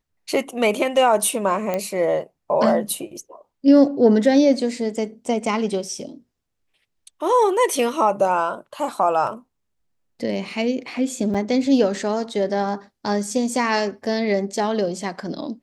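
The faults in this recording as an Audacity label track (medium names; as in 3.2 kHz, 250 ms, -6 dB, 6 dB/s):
1.740000	1.740000	pop -11 dBFS
11.340000	11.350000	dropout 5.8 ms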